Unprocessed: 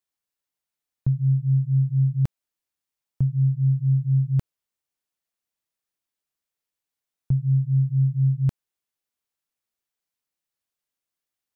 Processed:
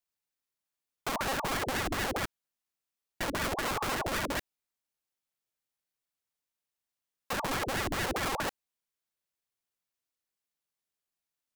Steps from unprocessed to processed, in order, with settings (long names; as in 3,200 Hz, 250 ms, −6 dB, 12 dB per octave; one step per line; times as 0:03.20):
wrap-around overflow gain 24.5 dB
ring modulator whose carrier an LFO sweeps 580 Hz, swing 80%, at 5 Hz